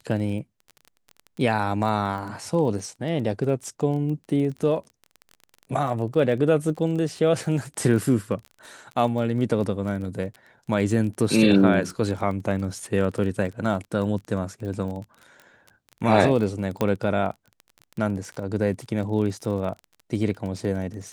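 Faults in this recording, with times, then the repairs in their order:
surface crackle 22 per second −32 dBFS
0:16.81: click −11 dBFS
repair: click removal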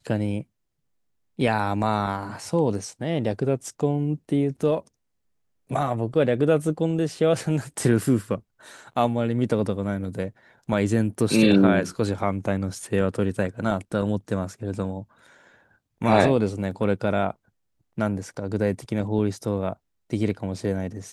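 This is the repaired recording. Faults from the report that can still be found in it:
none of them is left

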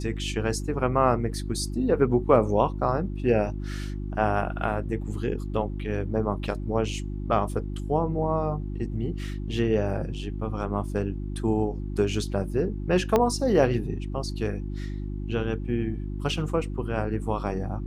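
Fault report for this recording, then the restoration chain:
mains hum 50 Hz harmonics 7 −32 dBFS
0:13.16: click −9 dBFS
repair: click removal
hum removal 50 Hz, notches 7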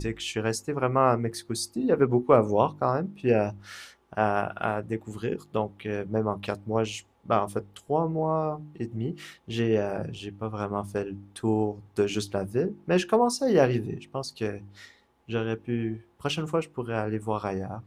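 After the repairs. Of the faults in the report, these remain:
0:13.16: click

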